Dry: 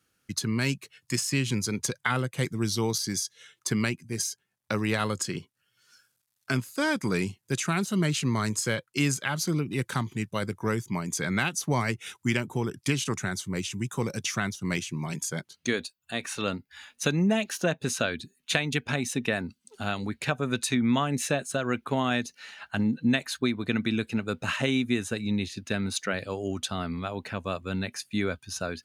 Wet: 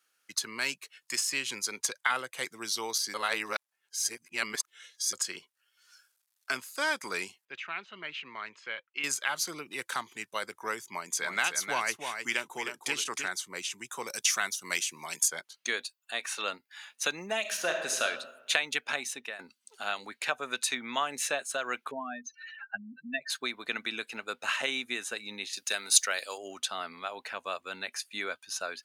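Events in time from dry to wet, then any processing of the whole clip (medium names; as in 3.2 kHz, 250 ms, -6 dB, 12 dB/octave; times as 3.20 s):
3.14–5.13 s: reverse
7.45–9.04 s: four-pole ladder low-pass 3.2 kHz, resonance 45%
10.84–13.28 s: delay 310 ms -6.5 dB
14.07–15.28 s: treble shelf 5 kHz +10.5 dB
17.40–18.03 s: reverb throw, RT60 1 s, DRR 2.5 dB
18.96–19.39 s: fade out, to -14 dB
21.91–23.30 s: spectral contrast enhancement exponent 3
25.53–26.38 s: tone controls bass -9 dB, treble +14 dB
whole clip: high-pass 720 Hz 12 dB/octave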